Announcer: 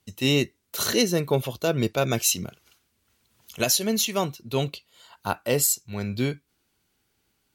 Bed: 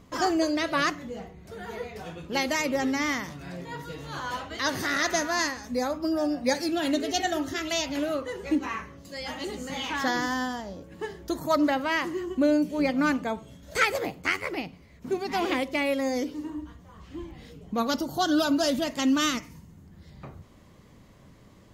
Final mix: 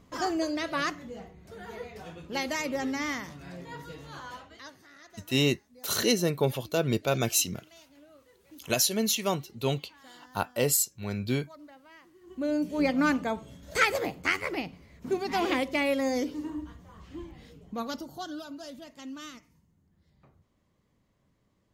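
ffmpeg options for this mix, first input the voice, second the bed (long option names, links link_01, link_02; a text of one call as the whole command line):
ffmpeg -i stem1.wav -i stem2.wav -filter_complex "[0:a]adelay=5100,volume=-3dB[link_01];[1:a]volume=22dB,afade=type=out:start_time=3.87:duration=0.9:silence=0.0749894,afade=type=in:start_time=12.21:duration=0.62:silence=0.0473151,afade=type=out:start_time=16.71:duration=1.73:silence=0.133352[link_02];[link_01][link_02]amix=inputs=2:normalize=0" out.wav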